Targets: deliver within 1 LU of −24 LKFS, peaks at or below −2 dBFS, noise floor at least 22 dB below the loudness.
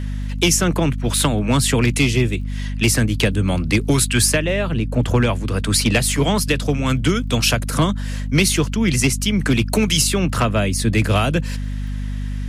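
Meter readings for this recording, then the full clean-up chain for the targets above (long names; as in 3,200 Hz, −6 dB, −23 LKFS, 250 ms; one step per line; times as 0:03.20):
crackle rate 22 per second; mains hum 50 Hz; hum harmonics up to 250 Hz; level of the hum −22 dBFS; integrated loudness −18.5 LKFS; sample peak −3.5 dBFS; target loudness −24.0 LKFS
→ click removal
mains-hum notches 50/100/150/200/250 Hz
level −5.5 dB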